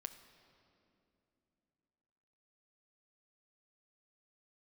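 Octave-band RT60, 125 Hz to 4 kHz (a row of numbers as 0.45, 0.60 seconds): 3.5, 3.6, 3.2, 2.7, 2.3, 1.9 seconds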